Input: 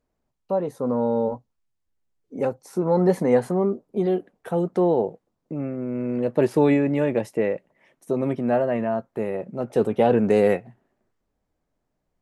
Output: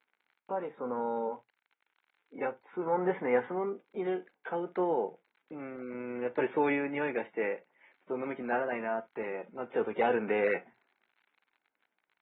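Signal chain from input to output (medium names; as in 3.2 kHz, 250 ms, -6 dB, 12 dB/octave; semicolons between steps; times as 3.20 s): crackle 65 per s -45 dBFS; cabinet simulation 360–3500 Hz, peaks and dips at 610 Hz -7 dB, 870 Hz +5 dB, 1.5 kHz +8 dB, 2.2 kHz +8 dB; on a send at -16 dB: reverberation, pre-delay 4 ms; on the sum: trim -7.5 dB; AAC 16 kbps 32 kHz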